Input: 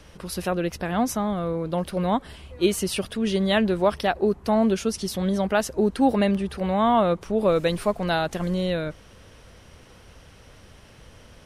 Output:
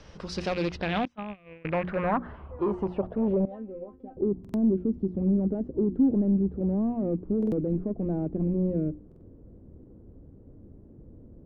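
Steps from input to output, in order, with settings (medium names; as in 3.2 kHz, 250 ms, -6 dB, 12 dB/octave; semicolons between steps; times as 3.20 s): rattle on loud lows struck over -30 dBFS, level -24 dBFS; steep low-pass 9.4 kHz; hum notches 60/120/180/240/300/360 Hz; 1.05–1.65 s: gate -22 dBFS, range -30 dB; treble shelf 2.7 kHz -11 dB; peak limiter -17 dBFS, peak gain reduction 7.5 dB; 3.45–4.17 s: feedback comb 260 Hz, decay 0.17 s, harmonics all, mix 100%; hard clipper -23 dBFS, distortion -13 dB; low-pass sweep 5.5 kHz -> 310 Hz, 0.36–4.23 s; buffer glitch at 4.40/7.38/9.07 s, samples 2048, times 2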